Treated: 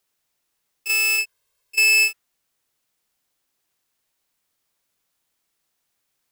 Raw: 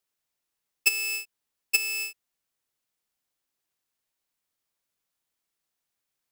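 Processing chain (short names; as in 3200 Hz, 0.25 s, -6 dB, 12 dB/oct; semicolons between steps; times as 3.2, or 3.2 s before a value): 1.18–2.08 comb 1.9 ms, depth 87%; negative-ratio compressor -25 dBFS, ratio -0.5; dynamic EQ 1400 Hz, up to +7 dB, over -44 dBFS, Q 1; gain +6.5 dB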